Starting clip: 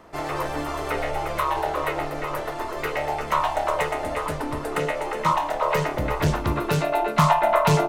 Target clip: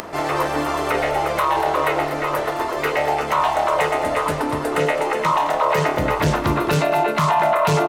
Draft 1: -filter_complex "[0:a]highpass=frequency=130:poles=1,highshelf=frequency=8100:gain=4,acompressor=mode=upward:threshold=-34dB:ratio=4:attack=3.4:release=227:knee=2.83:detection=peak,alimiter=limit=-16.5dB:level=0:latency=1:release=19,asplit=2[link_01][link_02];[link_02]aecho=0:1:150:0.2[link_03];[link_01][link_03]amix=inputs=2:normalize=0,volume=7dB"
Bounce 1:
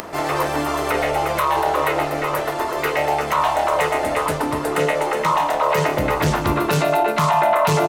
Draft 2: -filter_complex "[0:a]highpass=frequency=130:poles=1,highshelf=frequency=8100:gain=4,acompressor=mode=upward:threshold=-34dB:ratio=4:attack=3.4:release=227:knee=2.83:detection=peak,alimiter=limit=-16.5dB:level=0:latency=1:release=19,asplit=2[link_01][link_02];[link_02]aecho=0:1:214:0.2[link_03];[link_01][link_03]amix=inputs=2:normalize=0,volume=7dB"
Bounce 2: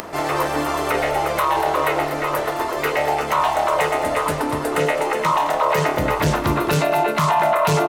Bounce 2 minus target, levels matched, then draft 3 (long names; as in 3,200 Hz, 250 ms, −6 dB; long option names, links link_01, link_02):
8,000 Hz band +2.5 dB
-filter_complex "[0:a]highpass=frequency=130:poles=1,highshelf=frequency=8100:gain=-2,acompressor=mode=upward:threshold=-34dB:ratio=4:attack=3.4:release=227:knee=2.83:detection=peak,alimiter=limit=-16.5dB:level=0:latency=1:release=19,asplit=2[link_01][link_02];[link_02]aecho=0:1:214:0.2[link_03];[link_01][link_03]amix=inputs=2:normalize=0,volume=7dB"